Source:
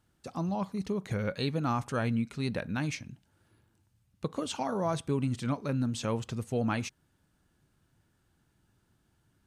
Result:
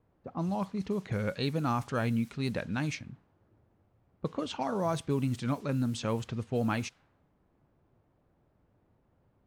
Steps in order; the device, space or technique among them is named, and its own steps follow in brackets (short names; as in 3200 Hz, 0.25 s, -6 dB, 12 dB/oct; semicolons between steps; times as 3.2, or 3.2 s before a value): cassette deck with a dynamic noise filter (white noise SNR 25 dB; low-pass opened by the level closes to 570 Hz, open at -26.5 dBFS)